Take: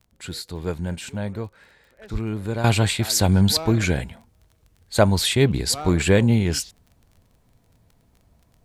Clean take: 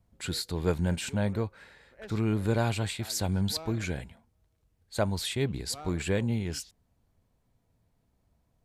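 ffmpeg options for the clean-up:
-filter_complex "[0:a]adeclick=t=4,asplit=3[a][b][c];[a]afade=t=out:st=2.12:d=0.02[d];[b]highpass=f=140:w=0.5412,highpass=f=140:w=1.3066,afade=t=in:st=2.12:d=0.02,afade=t=out:st=2.24:d=0.02[e];[c]afade=t=in:st=2.24:d=0.02[f];[d][e][f]amix=inputs=3:normalize=0,asetnsamples=n=441:p=0,asendcmd='2.64 volume volume -11.5dB',volume=0dB"

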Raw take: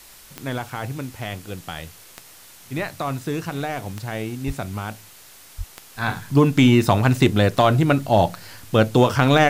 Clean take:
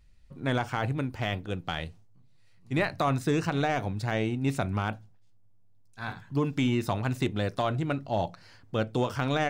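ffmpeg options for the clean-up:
-filter_complex "[0:a]adeclick=t=4,asplit=3[a][b][c];[a]afade=t=out:st=4.46:d=0.02[d];[b]highpass=f=140:w=0.5412,highpass=f=140:w=1.3066,afade=t=in:st=4.46:d=0.02,afade=t=out:st=4.58:d=0.02[e];[c]afade=t=in:st=4.58:d=0.02[f];[d][e][f]amix=inputs=3:normalize=0,asplit=3[g][h][i];[g]afade=t=out:st=5.57:d=0.02[j];[h]highpass=f=140:w=0.5412,highpass=f=140:w=1.3066,afade=t=in:st=5.57:d=0.02,afade=t=out:st=5.69:d=0.02[k];[i]afade=t=in:st=5.69:d=0.02[l];[j][k][l]amix=inputs=3:normalize=0,afwtdn=0.0056,asetnsamples=n=441:p=0,asendcmd='5.96 volume volume -12dB',volume=0dB"

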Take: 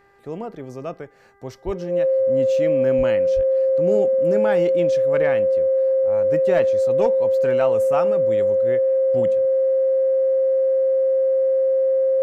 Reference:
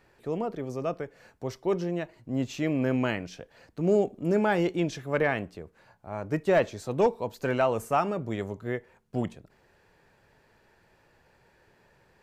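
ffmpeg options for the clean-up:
-filter_complex "[0:a]bandreject=f=397.9:t=h:w=4,bandreject=f=795.8:t=h:w=4,bandreject=f=1.1937k:t=h:w=4,bandreject=f=1.5916k:t=h:w=4,bandreject=f=1.9895k:t=h:w=4,bandreject=f=530:w=30,asplit=3[a][b][c];[a]afade=t=out:st=1.65:d=0.02[d];[b]highpass=f=140:w=0.5412,highpass=f=140:w=1.3066,afade=t=in:st=1.65:d=0.02,afade=t=out:st=1.77:d=0.02[e];[c]afade=t=in:st=1.77:d=0.02[f];[d][e][f]amix=inputs=3:normalize=0,asplit=3[g][h][i];[g]afade=t=out:st=2.97:d=0.02[j];[h]highpass=f=140:w=0.5412,highpass=f=140:w=1.3066,afade=t=in:st=2.97:d=0.02,afade=t=out:st=3.09:d=0.02[k];[i]afade=t=in:st=3.09:d=0.02[l];[j][k][l]amix=inputs=3:normalize=0,asplit=3[m][n][o];[m]afade=t=out:st=3.35:d=0.02[p];[n]highpass=f=140:w=0.5412,highpass=f=140:w=1.3066,afade=t=in:st=3.35:d=0.02,afade=t=out:st=3.47:d=0.02[q];[o]afade=t=in:st=3.47:d=0.02[r];[p][q][r]amix=inputs=3:normalize=0"

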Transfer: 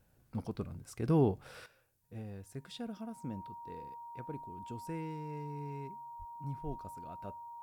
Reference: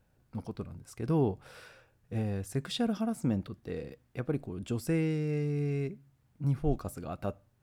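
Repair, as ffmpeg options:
-filter_complex "[0:a]bandreject=f=940:w=30,asplit=3[a][b][c];[a]afade=t=out:st=6.18:d=0.02[d];[b]highpass=f=140:w=0.5412,highpass=f=140:w=1.3066,afade=t=in:st=6.18:d=0.02,afade=t=out:st=6.3:d=0.02[e];[c]afade=t=in:st=6.3:d=0.02[f];[d][e][f]amix=inputs=3:normalize=0,agate=range=-21dB:threshold=-55dB,asetnsamples=n=441:p=0,asendcmd='1.66 volume volume 12dB',volume=0dB"

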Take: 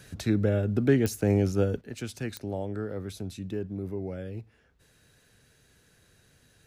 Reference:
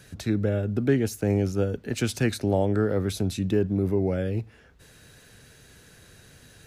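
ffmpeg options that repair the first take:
-af "adeclick=t=4,asetnsamples=n=441:p=0,asendcmd='1.81 volume volume 10dB',volume=0dB"

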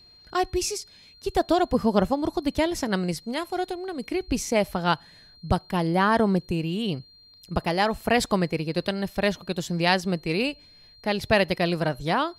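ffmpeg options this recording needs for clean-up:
-af "bandreject=f=4.2k:w=30"

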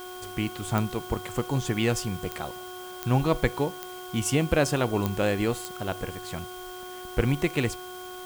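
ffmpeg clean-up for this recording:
-af "adeclick=t=4,bandreject=f=365.1:t=h:w=4,bandreject=f=730.2:t=h:w=4,bandreject=f=1.0953k:t=h:w=4,bandreject=f=1.4604k:t=h:w=4,bandreject=f=3.2k:w=30,afwtdn=0.004"

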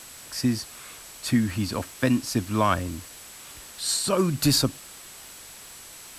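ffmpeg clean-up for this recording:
-af "adeclick=t=4,bandreject=f=7.8k:w=30,afwtdn=0.0071"

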